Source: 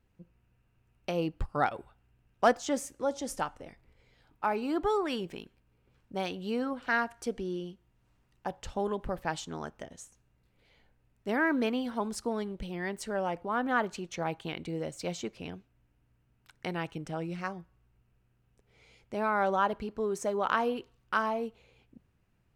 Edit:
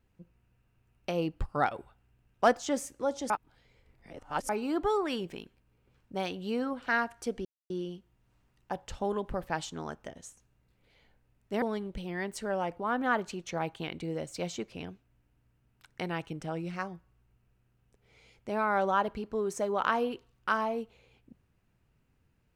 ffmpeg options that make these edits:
ffmpeg -i in.wav -filter_complex "[0:a]asplit=5[link_01][link_02][link_03][link_04][link_05];[link_01]atrim=end=3.302[link_06];[link_02]atrim=start=3.298:end=4.492,asetpts=PTS-STARTPTS,areverse[link_07];[link_03]atrim=start=4.488:end=7.45,asetpts=PTS-STARTPTS,afade=type=out:start_time=2.958:duration=0.004:curve=hsin,apad=pad_dur=0.25[link_08];[link_04]atrim=start=7.45:end=11.372,asetpts=PTS-STARTPTS,afade=type=in:duration=0.004:curve=hsin[link_09];[link_05]atrim=start=12.268[link_10];[link_06][link_07]acrossfade=duration=0.004:curve1=hsin:curve2=hsin[link_11];[link_08][link_09]concat=n=2:v=0:a=1[link_12];[link_11][link_12]acrossfade=duration=0.004:curve1=hsin:curve2=hsin[link_13];[link_13][link_10]acrossfade=duration=0.004:curve1=hsin:curve2=hsin" out.wav

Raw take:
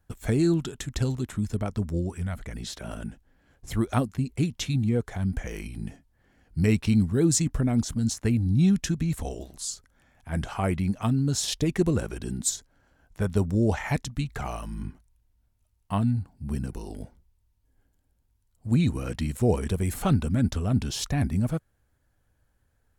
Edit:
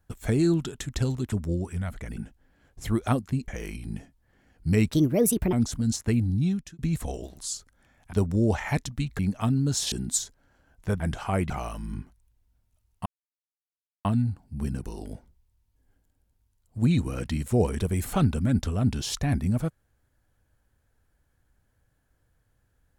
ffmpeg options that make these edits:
ffmpeg -i in.wav -filter_complex "[0:a]asplit=13[link_01][link_02][link_03][link_04][link_05][link_06][link_07][link_08][link_09][link_10][link_11][link_12][link_13];[link_01]atrim=end=1.322[link_14];[link_02]atrim=start=1.768:end=2.622[link_15];[link_03]atrim=start=3.028:end=4.342[link_16];[link_04]atrim=start=5.388:end=6.834[link_17];[link_05]atrim=start=6.83:end=7.7,asetpts=PTS-STARTPTS,asetrate=63063,aresample=44100,atrim=end_sample=26830,asetpts=PTS-STARTPTS[link_18];[link_06]atrim=start=7.696:end=8.96,asetpts=PTS-STARTPTS,afade=type=out:start_time=0.704:duration=0.56[link_19];[link_07]atrim=start=8.96:end=10.302,asetpts=PTS-STARTPTS,afade=type=in:duration=0.004:curve=hsin[link_20];[link_08]atrim=start=13.318:end=14.382[link_21];[link_09]atrim=start=10.798:end=11.532[link_22];[link_10]atrim=start=12.238:end=13.322[link_23];[link_11]atrim=start=10.298:end=10.802[link_24];[link_12]atrim=start=14.378:end=15.94,asetpts=PTS-STARTPTS,afade=type=out:start_time=1.558:duration=0.004:curve=hsin,apad=pad_dur=0.99[link_25];[link_13]atrim=start=15.94,asetpts=PTS-STARTPTS,afade=type=in:duration=0.004:curve=hsin[link_26];[link_14][link_15]acrossfade=duration=0.004:curve1=hsin:curve2=hsin[link_27];[link_27][link_16]acrossfade=duration=0.004:curve1=hsin:curve2=hsin[link_28];[link_28][link_17]acrossfade=duration=0.004:curve1=hsin:curve2=hsin[link_29];[link_29][link_18]acrossfade=duration=0.004:curve1=hsin:curve2=hsin[link_30];[link_19][link_20]concat=n=2:v=0:a=1[link_31];[link_30][link_31]acrossfade=duration=0.004:curve1=hsin:curve2=hsin[link_32];[link_32][link_21]acrossfade=duration=0.004:curve1=hsin:curve2=hsin[link_33];[link_33][link_22]acrossfade=duration=0.004:curve1=hsin:curve2=hsin[link_34];[link_34][link_23]acrossfade=duration=0.004:curve1=hsin:curve2=hsin[link_35];[link_35][link_24]acrossfade=duration=0.004:curve1=hsin:curve2=hsin[link_36];[link_25][link_26]concat=n=2:v=0:a=1[link_37];[link_36][link_37]acrossfade=duration=0.004:curve1=hsin:curve2=hsin" out.wav

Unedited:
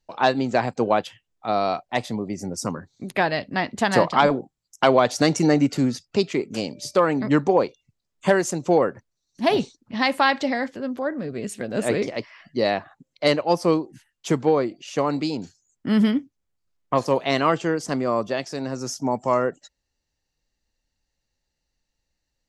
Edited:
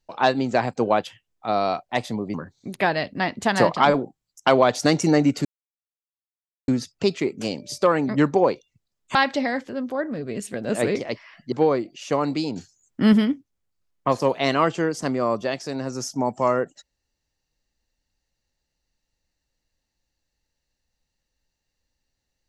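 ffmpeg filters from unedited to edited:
ffmpeg -i in.wav -filter_complex "[0:a]asplit=7[link_01][link_02][link_03][link_04][link_05][link_06][link_07];[link_01]atrim=end=2.342[link_08];[link_02]atrim=start=2.698:end=5.81,asetpts=PTS-STARTPTS,afade=type=out:start_time=3.108:duration=0.004:curve=hsin,apad=pad_dur=1.23[link_09];[link_03]atrim=start=5.81:end=8.282,asetpts=PTS-STARTPTS,afade=type=in:duration=0.004:curve=hsin[link_10];[link_04]atrim=start=10.218:end=12.592[link_11];[link_05]atrim=start=14.378:end=15.422[link_12];[link_06]atrim=start=15.418:end=15.992,asetpts=PTS-STARTPTS,volume=4dB[link_13];[link_07]atrim=start=15.988[link_14];[link_09][link_10]concat=n=2:v=0:a=1[link_15];[link_08][link_15]acrossfade=duration=0.004:curve1=hsin:curve2=hsin[link_16];[link_16][link_11]acrossfade=duration=0.004:curve1=hsin:curve2=hsin[link_17];[link_17][link_12]acrossfade=duration=0.004:curve1=hsin:curve2=hsin[link_18];[link_18][link_13]acrossfade=duration=0.004:curve1=hsin:curve2=hsin[link_19];[link_19][link_14]acrossfade=duration=0.004:curve1=hsin:curve2=hsin" out.wav

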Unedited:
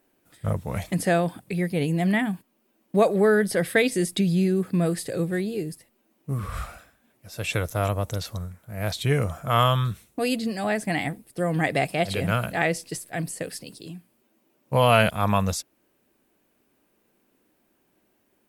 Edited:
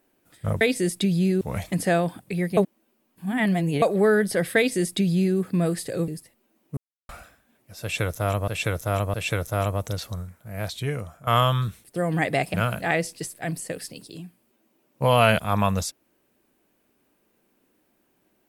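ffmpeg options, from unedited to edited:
ffmpeg -i in.wav -filter_complex "[0:a]asplit=13[link_01][link_02][link_03][link_04][link_05][link_06][link_07][link_08][link_09][link_10][link_11][link_12][link_13];[link_01]atrim=end=0.612[link_14];[link_02]atrim=start=3.768:end=4.572[link_15];[link_03]atrim=start=0.608:end=1.772[link_16];[link_04]atrim=start=1.768:end=3.022,asetpts=PTS-STARTPTS,areverse[link_17];[link_05]atrim=start=3.018:end=5.282[link_18];[link_06]atrim=start=5.628:end=6.32,asetpts=PTS-STARTPTS,afade=type=out:start_time=0.688:duration=0.004:curve=hsin[link_19];[link_07]atrim=start=6.32:end=6.64,asetpts=PTS-STARTPTS,volume=0[link_20];[link_08]atrim=start=6.64:end=8.032,asetpts=PTS-STARTPTS,afade=type=in:duration=0.004:curve=hsin[link_21];[link_09]atrim=start=7.368:end=8.032[link_22];[link_10]atrim=start=7.368:end=9.5,asetpts=PTS-STARTPTS,afade=type=out:start_time=1.192:duration=0.94:silence=0.199526[link_23];[link_11]atrim=start=9.5:end=10.072,asetpts=PTS-STARTPTS,afade=type=in:duration=0.004:curve=hsin:silence=0.199526[link_24];[link_12]atrim=start=11.258:end=11.962[link_25];[link_13]atrim=start=12.248[link_26];[link_14][link_15]acrossfade=duration=0.004:curve1=hsin:curve2=hsin[link_27];[link_27][link_16]acrossfade=duration=0.004:curve1=hsin:curve2=hsin[link_28];[link_28][link_17]acrossfade=duration=0.004:curve1=hsin:curve2=hsin[link_29];[link_29][link_18]acrossfade=duration=0.004:curve1=hsin:curve2=hsin[link_30];[link_19][link_20][link_21]concat=n=3:v=0:a=1[link_31];[link_30][link_31]acrossfade=duration=0.004:curve1=hsin:curve2=hsin[link_32];[link_32][link_22]acrossfade=duration=0.004:curve1=hsin:curve2=hsin[link_33];[link_23][link_24]concat=n=2:v=0:a=1[link_34];[link_33][link_34]acrossfade=duration=0.004:curve1=hsin:curve2=hsin[link_35];[link_35][link_25]acrossfade=duration=0.004:curve1=hsin:curve2=hsin[link_36];[link_36][link_26]acrossfade=duration=0.004:curve1=hsin:curve2=hsin" out.wav

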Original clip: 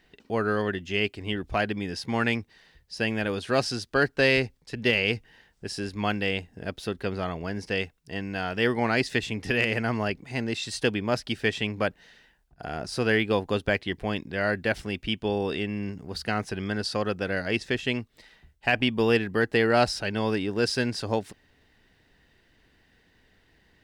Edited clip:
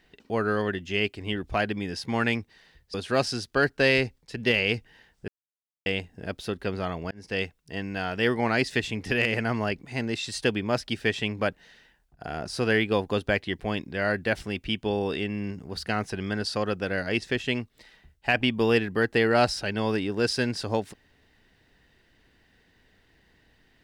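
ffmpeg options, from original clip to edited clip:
ffmpeg -i in.wav -filter_complex "[0:a]asplit=5[link_01][link_02][link_03][link_04][link_05];[link_01]atrim=end=2.942[link_06];[link_02]atrim=start=3.328:end=5.67,asetpts=PTS-STARTPTS,afade=type=out:start_time=2.338:duration=0.004:curve=hsin[link_07];[link_03]atrim=start=5.67:end=6.25,asetpts=PTS-STARTPTS,volume=0[link_08];[link_04]atrim=start=6.25:end=7.5,asetpts=PTS-STARTPTS,afade=type=in:duration=0.004:curve=hsin,afade=type=out:start_time=1.246:duration=0.004:curve=hsin[link_09];[link_05]atrim=start=7.5,asetpts=PTS-STARTPTS,afade=type=in:duration=0.28[link_10];[link_07][link_08][link_09][link_10]concat=n=4:v=0:a=1[link_11];[link_06][link_11]acrossfade=duration=0.004:curve1=hsin:curve2=hsin" out.wav

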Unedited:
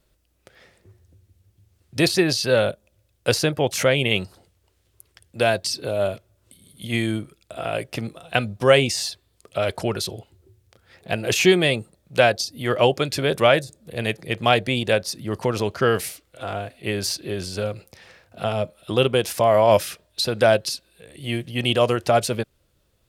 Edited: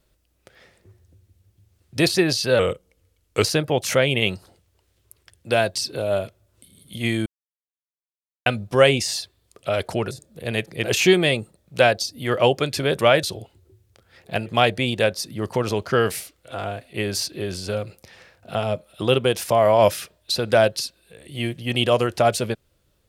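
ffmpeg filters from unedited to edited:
ffmpeg -i in.wav -filter_complex "[0:a]asplit=9[link_01][link_02][link_03][link_04][link_05][link_06][link_07][link_08][link_09];[link_01]atrim=end=2.594[link_10];[link_02]atrim=start=2.59:end=3.33,asetpts=PTS-STARTPTS,asetrate=38367,aresample=44100,atrim=end_sample=37510,asetpts=PTS-STARTPTS[link_11];[link_03]atrim=start=3.326:end=7.15,asetpts=PTS-STARTPTS,afade=type=out:start_time=3.82:duration=0.004:curve=hsin[link_12];[link_04]atrim=start=7.15:end=8.35,asetpts=PTS-STARTPTS,volume=0[link_13];[link_05]atrim=start=8.35:end=10.002,asetpts=PTS-STARTPTS,afade=type=in:duration=0.004:curve=hsin[link_14];[link_06]atrim=start=13.618:end=14.352[link_15];[link_07]atrim=start=11.228:end=13.622[link_16];[link_08]atrim=start=9.998:end=11.232[link_17];[link_09]atrim=start=14.348[link_18];[link_10][link_11]acrossfade=duration=0.004:curve1=hsin:curve2=hsin[link_19];[link_12][link_13][link_14]concat=n=3:v=0:a=1[link_20];[link_19][link_20]acrossfade=duration=0.004:curve1=hsin:curve2=hsin[link_21];[link_21][link_15]acrossfade=duration=0.004:curve1=hsin:curve2=hsin[link_22];[link_22][link_16]acrossfade=duration=0.004:curve1=hsin:curve2=hsin[link_23];[link_23][link_17]acrossfade=duration=0.004:curve1=hsin:curve2=hsin[link_24];[link_24][link_18]acrossfade=duration=0.004:curve1=hsin:curve2=hsin" out.wav

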